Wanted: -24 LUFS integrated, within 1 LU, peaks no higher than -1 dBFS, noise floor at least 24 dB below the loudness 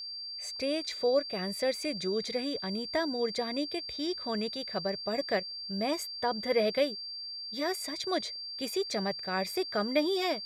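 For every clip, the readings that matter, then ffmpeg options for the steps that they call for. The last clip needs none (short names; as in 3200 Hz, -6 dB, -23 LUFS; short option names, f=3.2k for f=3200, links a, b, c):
steady tone 4700 Hz; tone level -38 dBFS; loudness -32.0 LUFS; peak -14.5 dBFS; loudness target -24.0 LUFS
-> -af "bandreject=f=4.7k:w=30"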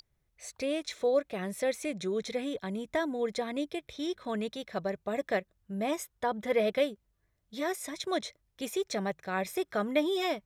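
steady tone none; loudness -33.0 LUFS; peak -15.0 dBFS; loudness target -24.0 LUFS
-> -af "volume=9dB"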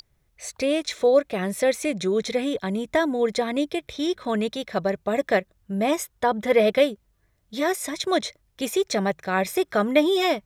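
loudness -24.0 LUFS; peak -6.0 dBFS; noise floor -68 dBFS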